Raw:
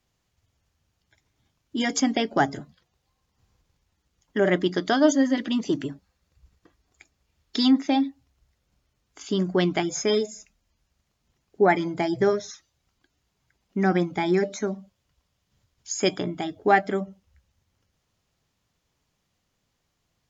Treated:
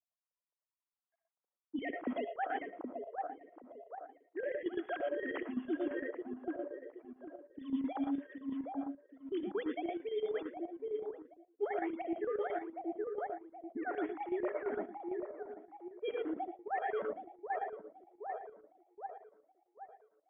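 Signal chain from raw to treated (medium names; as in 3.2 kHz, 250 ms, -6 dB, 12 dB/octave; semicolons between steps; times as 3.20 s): formants replaced by sine waves; thinning echo 772 ms, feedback 63%, high-pass 460 Hz, level -11 dB; reverberation, pre-delay 50 ms, DRR 4 dB; level-controlled noise filter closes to 480 Hz, open at -17.5 dBFS; tilt EQ +3 dB/octave; reverse; compression 10:1, threshold -36 dBFS, peak gain reduction 24 dB; reverse; square tremolo 8.8 Hz, depth 60%, duty 75%; low-pass 1.4 kHz 12 dB/octave; trim +3.5 dB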